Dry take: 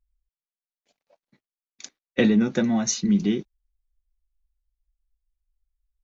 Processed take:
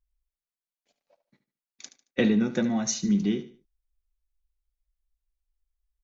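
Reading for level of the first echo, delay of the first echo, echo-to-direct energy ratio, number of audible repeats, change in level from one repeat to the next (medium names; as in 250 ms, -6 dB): -13.5 dB, 74 ms, -13.0 dB, 3, -10.0 dB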